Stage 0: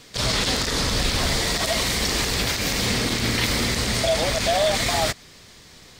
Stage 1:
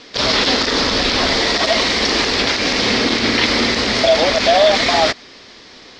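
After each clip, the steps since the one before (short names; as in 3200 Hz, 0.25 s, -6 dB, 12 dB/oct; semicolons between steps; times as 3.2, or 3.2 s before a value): EQ curve 160 Hz 0 dB, 250 Hz +13 dB, 5300 Hz +11 dB, 12000 Hz -23 dB; gain -3.5 dB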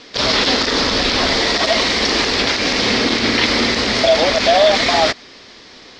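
nothing audible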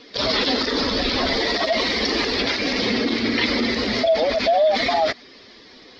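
spectral contrast raised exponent 1.6; gain -5 dB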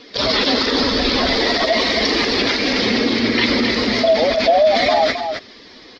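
echo 0.266 s -7.5 dB; gain +3.5 dB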